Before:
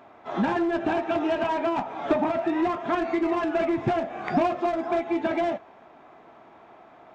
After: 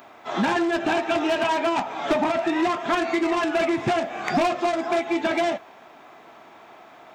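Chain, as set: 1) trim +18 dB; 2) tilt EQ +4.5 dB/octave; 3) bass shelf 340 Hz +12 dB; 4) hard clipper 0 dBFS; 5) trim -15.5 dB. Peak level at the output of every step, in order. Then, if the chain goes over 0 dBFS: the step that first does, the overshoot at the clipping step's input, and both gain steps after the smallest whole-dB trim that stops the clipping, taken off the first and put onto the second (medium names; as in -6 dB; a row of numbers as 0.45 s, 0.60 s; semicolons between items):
+4.5 dBFS, +6.5 dBFS, +7.5 dBFS, 0.0 dBFS, -15.5 dBFS; step 1, 7.5 dB; step 1 +10 dB, step 5 -7.5 dB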